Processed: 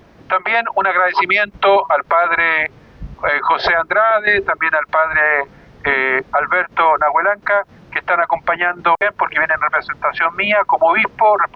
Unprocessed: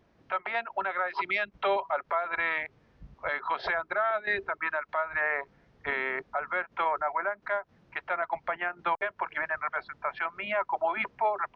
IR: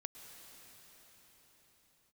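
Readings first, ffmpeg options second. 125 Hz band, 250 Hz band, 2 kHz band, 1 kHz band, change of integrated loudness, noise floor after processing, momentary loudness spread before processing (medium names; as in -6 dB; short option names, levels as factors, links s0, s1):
+17.5 dB, +16.5 dB, +15.5 dB, +15.5 dB, +15.5 dB, -47 dBFS, 6 LU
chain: -af "alimiter=level_in=12.6:limit=0.891:release=50:level=0:latency=1,volume=0.708"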